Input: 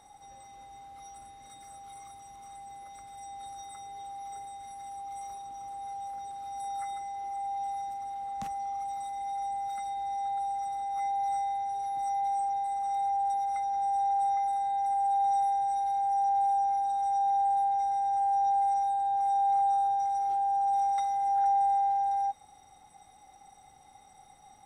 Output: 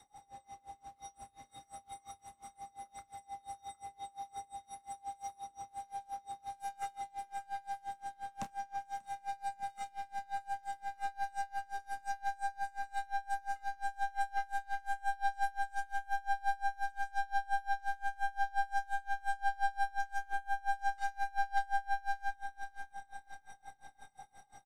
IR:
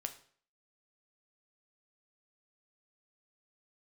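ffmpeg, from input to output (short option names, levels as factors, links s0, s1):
-filter_complex "[0:a]adynamicequalizer=threshold=0.00447:dfrequency=650:dqfactor=4:tfrequency=650:tqfactor=4:attack=5:release=100:ratio=0.375:range=4:mode=cutabove:tftype=bell,aeval=exprs='clip(val(0),-1,0.0126)':c=same,asplit=2[s0][s1];[s1]adelay=30,volume=0.501[s2];[s0][s2]amix=inputs=2:normalize=0,aecho=1:1:588|1176|1764|2352|2940|3528:0.376|0.188|0.094|0.047|0.0235|0.0117,aeval=exprs='val(0)*pow(10,-27*(0.5-0.5*cos(2*PI*5.7*n/s))/20)':c=same,volume=1.12"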